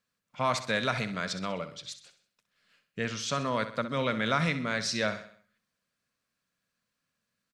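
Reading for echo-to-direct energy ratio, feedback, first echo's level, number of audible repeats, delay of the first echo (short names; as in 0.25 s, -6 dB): -11.0 dB, 47%, -12.0 dB, 4, 64 ms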